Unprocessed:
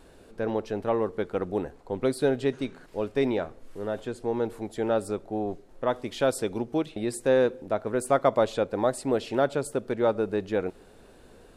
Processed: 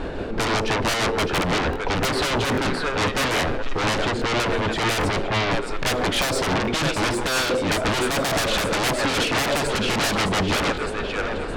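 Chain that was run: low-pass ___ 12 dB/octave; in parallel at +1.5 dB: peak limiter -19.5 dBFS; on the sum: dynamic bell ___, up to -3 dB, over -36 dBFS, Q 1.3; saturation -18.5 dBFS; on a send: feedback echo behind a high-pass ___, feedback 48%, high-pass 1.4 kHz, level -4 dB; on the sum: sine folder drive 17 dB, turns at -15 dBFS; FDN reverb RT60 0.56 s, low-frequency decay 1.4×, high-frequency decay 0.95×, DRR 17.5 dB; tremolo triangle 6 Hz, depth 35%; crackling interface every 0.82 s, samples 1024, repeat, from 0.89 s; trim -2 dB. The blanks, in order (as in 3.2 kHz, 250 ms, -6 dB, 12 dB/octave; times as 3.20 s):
3.1 kHz, 1.1 kHz, 613 ms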